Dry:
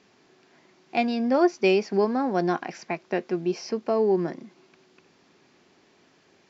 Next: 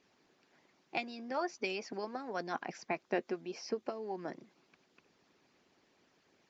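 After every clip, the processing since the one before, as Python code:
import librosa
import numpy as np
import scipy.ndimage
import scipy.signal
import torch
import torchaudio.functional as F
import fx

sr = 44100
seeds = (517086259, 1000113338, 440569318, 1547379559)

y = fx.hpss(x, sr, part='harmonic', gain_db=-15)
y = y * librosa.db_to_amplitude(-5.5)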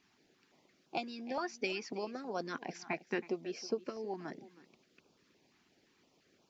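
y = x + 10.0 ** (-17.5 / 20.0) * np.pad(x, (int(321 * sr / 1000.0), 0))[:len(x)]
y = fx.filter_held_notch(y, sr, hz=5.8, low_hz=530.0, high_hz=1900.0)
y = y * librosa.db_to_amplitude(1.5)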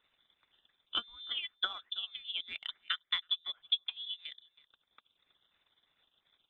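y = fx.freq_invert(x, sr, carrier_hz=3800)
y = fx.transient(y, sr, attack_db=8, sustain_db=-11)
y = y * librosa.db_to_amplitude(-3.5)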